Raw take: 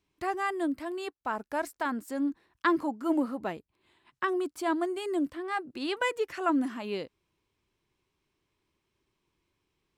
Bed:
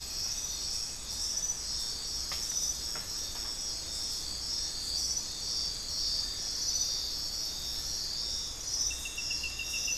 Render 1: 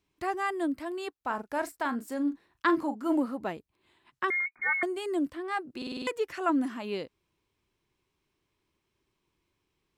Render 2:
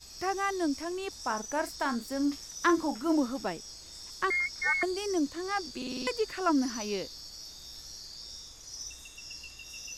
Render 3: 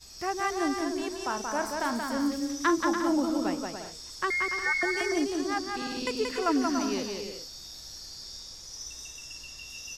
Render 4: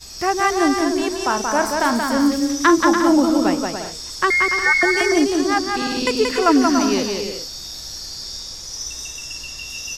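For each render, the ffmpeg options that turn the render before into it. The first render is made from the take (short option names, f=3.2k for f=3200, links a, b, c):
-filter_complex "[0:a]asettb=1/sr,asplit=3[a][b][c];[a]atrim=end=1.204[d];[b]atrim=start=1.2:end=3.17,asetpts=PTS-STARTPTS,afade=t=in:d=0.004:c=qsin,afade=t=out:st=1.966:d=0.004:c=qsin,asplit=2[e][f];[f]adelay=38,volume=-11dB[g];[e][g]amix=inputs=2:normalize=0,atrim=end_sample=86877[h];[c]atrim=start=3.166[i];[d][h]acrossfade=d=0.004:c1=hsin:c2=qsin[j];[j][i]acrossfade=d=0.004:c1=qsin:c2=hsin,asettb=1/sr,asplit=3[k][l][m];[k]atrim=end=4.304[n];[l]atrim=start=4.3:end=4.83,asetpts=PTS-STARTPTS,afade=t=in:d=0.004:c=qsin,afade=t=out:st=0.526:d=0.004:c=qsin,lowpass=f=2.1k:t=q:w=0.5098,lowpass=f=2.1k:t=q:w=0.6013,lowpass=f=2.1k:t=q:w=0.9,lowpass=f=2.1k:t=q:w=2.563,afreqshift=-2500[o];[m]atrim=start=4.826[p];[n][o]acrossfade=d=0.004:c1=hsin:c2=qsin[q];[q][p]acrossfade=d=0.004:c1=qsin:c2=hsin,asplit=7[r][s][t][u][v][w][x];[r]atrim=end=5.822[y];[s]atrim=start=5.768:end=5.822[z];[t]atrim=start=5.768:end=5.822[aa];[u]atrim=start=5.768:end=5.822[ab];[v]atrim=start=5.768:end=5.822[ac];[w]atrim=start=5.768:end=5.822[ad];[x]atrim=start=6.068[ae];[y][z]acrossfade=d=0.004:c1=hsin:c2=hsin[af];[af][aa]acrossfade=d=0.004:c1=hsin:c2=hsin[ag];[ag][ab]acrossfade=d=0.004:c1=hsin:c2=hsin[ah];[ah][ac]acrossfade=d=0.004:c1=hsin:c2=hsin[ai];[ai][ad]acrossfade=d=0.004:c1=hsin:c2=hsin[aj];[aj][ae]acrossfade=d=0.004:c1=hsin:c2=hsin"
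-filter_complex "[1:a]volume=-10dB[a];[0:a][a]amix=inputs=2:normalize=0"
-af "aecho=1:1:180|288|352.8|391.7|415:0.631|0.398|0.251|0.158|0.1"
-af "volume=11.5dB,alimiter=limit=-3dB:level=0:latency=1"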